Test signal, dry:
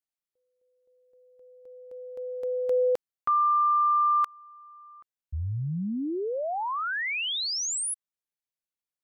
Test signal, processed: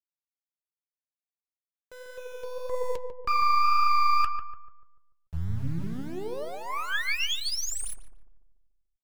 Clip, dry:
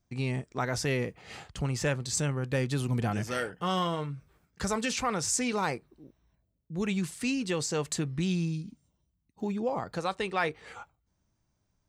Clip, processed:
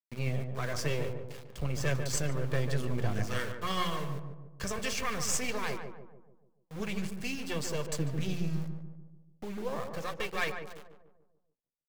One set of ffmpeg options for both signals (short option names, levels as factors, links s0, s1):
-filter_complex "[0:a]bandreject=f=3900:w=12,agate=range=0.0224:threshold=0.00158:ratio=3:release=74:detection=peak,lowshelf=f=250:g=2,bandreject=f=60:t=h:w=6,bandreject=f=120:t=h:w=6,bandreject=f=180:t=h:w=6,aecho=1:1:1.8:0.54,acrossover=split=440|960[s0][s1][s2];[s1]acompressor=threshold=0.00562:ratio=12:attack=14:release=26:knee=6:detection=peak[s3];[s0][s3][s2]amix=inputs=3:normalize=0,aeval=exprs='0.2*(cos(1*acos(clip(val(0)/0.2,-1,1)))-cos(1*PI/2))+0.0282*(cos(6*acos(clip(val(0)/0.2,-1,1)))-cos(6*PI/2))':c=same,adynamicsmooth=sensitivity=7:basefreq=7400,aeval=exprs='val(0)*gte(abs(val(0)),0.0112)':c=same,flanger=delay=1.1:depth=6.4:regen=66:speed=1.8:shape=triangular,asplit=2[s4][s5];[s5]adelay=146,lowpass=f=1100:p=1,volume=0.531,asplit=2[s6][s7];[s7]adelay=146,lowpass=f=1100:p=1,volume=0.52,asplit=2[s8][s9];[s9]adelay=146,lowpass=f=1100:p=1,volume=0.52,asplit=2[s10][s11];[s11]adelay=146,lowpass=f=1100:p=1,volume=0.52,asplit=2[s12][s13];[s13]adelay=146,lowpass=f=1100:p=1,volume=0.52,asplit=2[s14][s15];[s15]adelay=146,lowpass=f=1100:p=1,volume=0.52,asplit=2[s16][s17];[s17]adelay=146,lowpass=f=1100:p=1,volume=0.52[s18];[s4][s6][s8][s10][s12][s14][s16][s18]amix=inputs=8:normalize=0,adynamicequalizer=threshold=0.0158:dfrequency=1500:dqfactor=0.7:tfrequency=1500:tqfactor=0.7:attack=5:release=100:ratio=0.375:range=2:mode=boostabove:tftype=highshelf"